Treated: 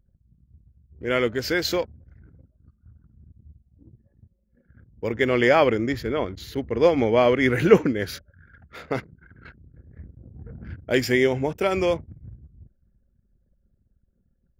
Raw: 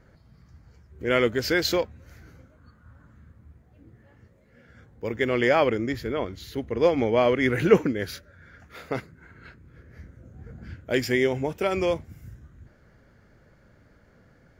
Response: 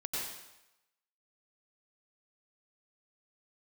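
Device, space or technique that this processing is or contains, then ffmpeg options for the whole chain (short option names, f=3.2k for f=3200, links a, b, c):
voice memo with heavy noise removal: -af "anlmdn=0.0251,dynaudnorm=f=610:g=11:m=11.5dB,volume=-1dB"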